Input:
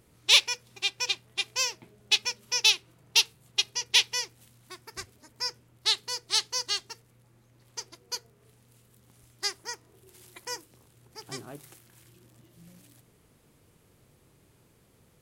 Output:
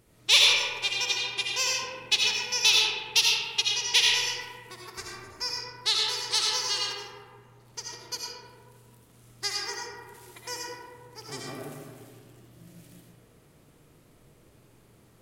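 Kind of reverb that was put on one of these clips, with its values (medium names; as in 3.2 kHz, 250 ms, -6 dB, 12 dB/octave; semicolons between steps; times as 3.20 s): algorithmic reverb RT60 1.9 s, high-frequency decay 0.4×, pre-delay 40 ms, DRR -3.5 dB; trim -1 dB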